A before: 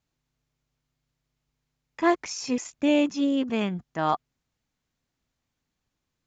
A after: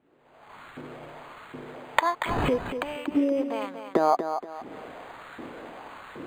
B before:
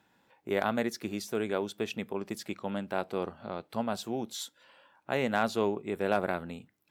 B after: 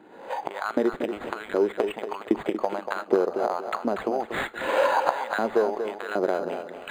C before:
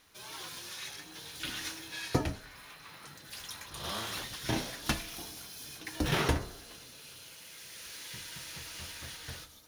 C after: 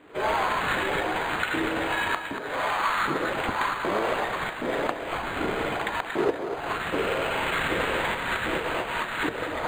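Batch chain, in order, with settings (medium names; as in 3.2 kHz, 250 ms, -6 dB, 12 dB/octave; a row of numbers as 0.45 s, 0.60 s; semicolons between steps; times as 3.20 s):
recorder AGC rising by 52 dB/s; tilt EQ -2.5 dB/octave; compression 6:1, threshold -33 dBFS; LFO high-pass saw up 1.3 Hz 310–1600 Hz; on a send: tape echo 236 ms, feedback 35%, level -8 dB, low-pass 5.8 kHz; on the sum: decimation joined by straight lines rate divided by 8×; normalise loudness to -27 LUFS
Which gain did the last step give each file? +12.5 dB, +12.0 dB, +11.0 dB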